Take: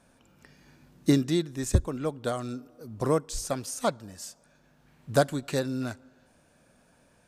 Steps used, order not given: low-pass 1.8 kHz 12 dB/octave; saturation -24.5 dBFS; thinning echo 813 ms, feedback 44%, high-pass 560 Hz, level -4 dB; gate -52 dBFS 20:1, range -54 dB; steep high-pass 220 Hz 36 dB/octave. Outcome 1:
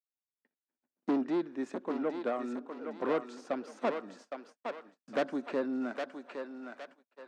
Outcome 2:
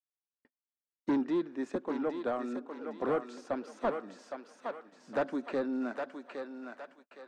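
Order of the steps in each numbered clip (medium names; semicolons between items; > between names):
low-pass > saturation > thinning echo > gate > steep high-pass; steep high-pass > saturation > thinning echo > gate > low-pass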